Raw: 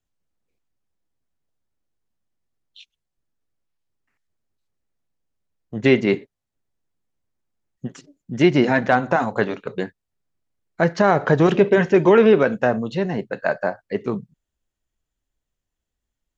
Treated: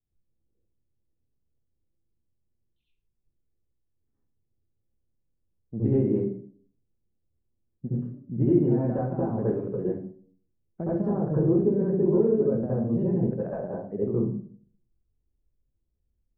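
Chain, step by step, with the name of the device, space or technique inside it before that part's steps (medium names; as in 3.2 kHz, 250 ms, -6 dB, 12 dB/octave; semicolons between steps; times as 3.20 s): 11.02–12.68 s: distance through air 500 m; television next door (compression 5:1, threshold -20 dBFS, peak gain reduction 10 dB; low-pass 330 Hz 12 dB/octave; reverberation RT60 0.50 s, pre-delay 65 ms, DRR -8 dB); trim -4 dB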